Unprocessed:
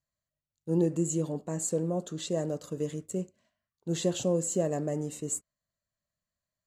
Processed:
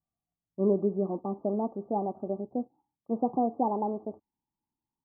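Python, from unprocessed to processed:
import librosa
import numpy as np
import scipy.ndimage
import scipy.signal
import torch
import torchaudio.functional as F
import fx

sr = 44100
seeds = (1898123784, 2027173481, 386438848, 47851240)

y = fx.speed_glide(x, sr, from_pct=114, to_pct=150)
y = scipy.signal.sosfilt(scipy.signal.cheby1(6, 6, 1200.0, 'lowpass', fs=sr, output='sos'), y)
y = F.gain(torch.from_numpy(y), 4.0).numpy()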